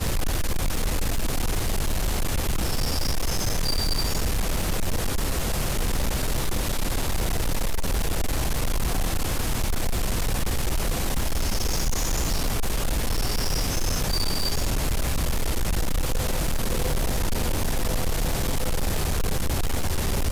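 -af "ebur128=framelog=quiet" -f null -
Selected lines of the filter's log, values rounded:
Integrated loudness:
  I:         -27.2 LUFS
  Threshold: -37.2 LUFS
Loudness range:
  LRA:         1.1 LU
  Threshold: -47.2 LUFS
  LRA low:   -27.7 LUFS
  LRA high:  -26.6 LUFS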